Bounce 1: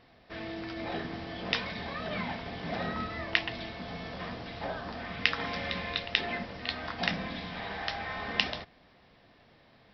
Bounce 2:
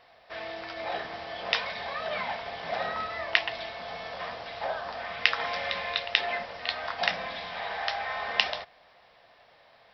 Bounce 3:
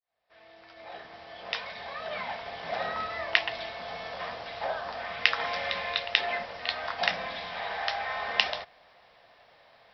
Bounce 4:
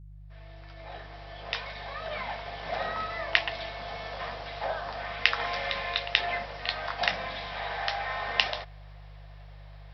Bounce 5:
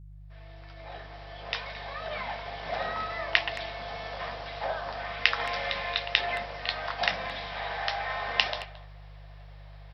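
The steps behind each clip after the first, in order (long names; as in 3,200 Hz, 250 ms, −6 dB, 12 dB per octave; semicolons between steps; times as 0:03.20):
low shelf with overshoot 420 Hz −12.5 dB, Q 1.5; level +3 dB
fade in at the beginning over 3.08 s
hum with harmonics 50 Hz, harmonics 3, −47 dBFS −6 dB per octave
far-end echo of a speakerphone 220 ms, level −16 dB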